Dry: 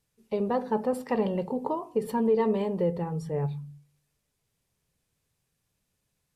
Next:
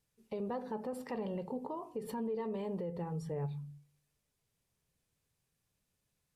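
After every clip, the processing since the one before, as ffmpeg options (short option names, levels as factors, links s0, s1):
-af "alimiter=level_in=1.26:limit=0.0631:level=0:latency=1:release=147,volume=0.794,volume=0.596"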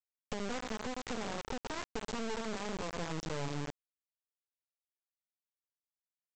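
-af "acompressor=threshold=0.00562:ratio=8,aresample=16000,acrusher=bits=5:dc=4:mix=0:aa=0.000001,aresample=44100,volume=3.76"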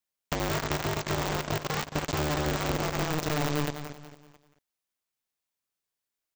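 -af "aecho=1:1:221|442|663|884:0.299|0.113|0.0431|0.0164,aeval=exprs='val(0)*sgn(sin(2*PI*150*n/s))':c=same,volume=2.51"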